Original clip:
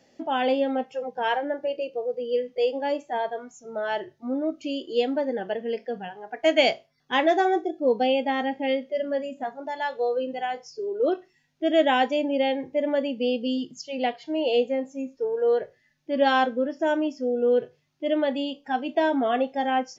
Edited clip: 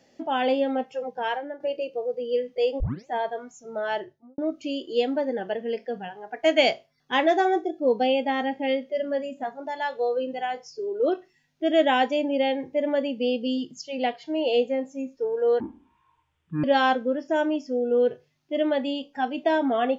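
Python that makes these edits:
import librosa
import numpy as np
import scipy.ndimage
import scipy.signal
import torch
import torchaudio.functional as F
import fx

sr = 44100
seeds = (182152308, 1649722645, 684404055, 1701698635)

y = fx.studio_fade_out(x, sr, start_s=3.93, length_s=0.45)
y = fx.edit(y, sr, fx.fade_out_to(start_s=1.08, length_s=0.52, floor_db=-10.0),
    fx.tape_start(start_s=2.8, length_s=0.27),
    fx.speed_span(start_s=15.6, length_s=0.55, speed=0.53), tone=tone)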